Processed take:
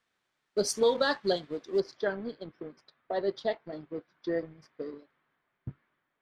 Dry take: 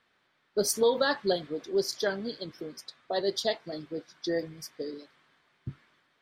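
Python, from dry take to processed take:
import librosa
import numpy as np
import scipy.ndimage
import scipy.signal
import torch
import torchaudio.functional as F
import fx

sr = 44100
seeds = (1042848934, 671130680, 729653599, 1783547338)

y = fx.law_mismatch(x, sr, coded='A')
y = fx.lowpass(y, sr, hz=fx.steps((0.0, 7800.0), (1.8, 2100.0)), slope=12)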